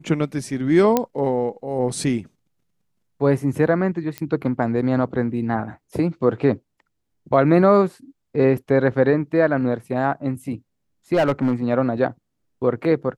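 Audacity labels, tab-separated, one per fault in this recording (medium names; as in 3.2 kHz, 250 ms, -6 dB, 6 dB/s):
0.970000	0.970000	pop -4 dBFS
4.180000	4.180000	pop -13 dBFS
11.130000	11.530000	clipped -13.5 dBFS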